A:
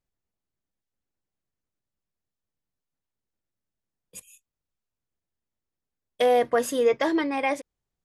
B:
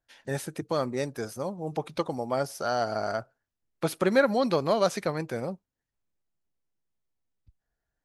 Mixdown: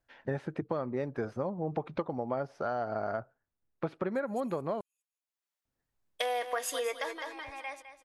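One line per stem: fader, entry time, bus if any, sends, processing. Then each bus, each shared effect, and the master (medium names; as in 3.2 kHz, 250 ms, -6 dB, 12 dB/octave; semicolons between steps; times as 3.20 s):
+1.0 dB, 0.00 s, no send, echo send -13 dB, high-pass 830 Hz 12 dB/octave; auto duck -22 dB, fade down 0.65 s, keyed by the second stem
-0.5 dB, 0.00 s, muted 4.81–5.65 s, no send, no echo send, low-pass 1.8 kHz 12 dB/octave; gain riding within 4 dB 0.5 s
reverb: none
echo: feedback delay 207 ms, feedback 27%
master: compression, threshold -29 dBFS, peak gain reduction 9.5 dB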